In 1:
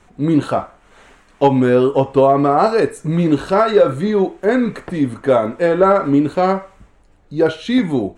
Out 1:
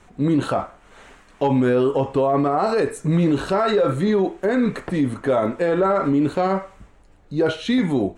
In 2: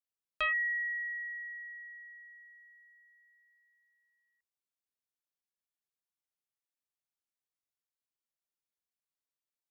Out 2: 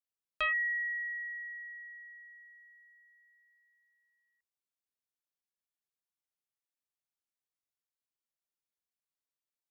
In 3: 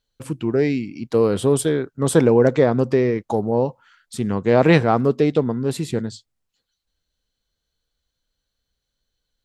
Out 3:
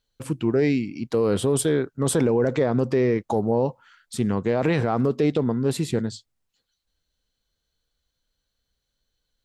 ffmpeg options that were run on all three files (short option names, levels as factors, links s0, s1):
-af "alimiter=limit=0.266:level=0:latency=1:release=30"